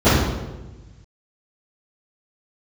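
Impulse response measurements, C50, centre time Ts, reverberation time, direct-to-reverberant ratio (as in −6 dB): −1.0 dB, 82 ms, 1.2 s, −21.0 dB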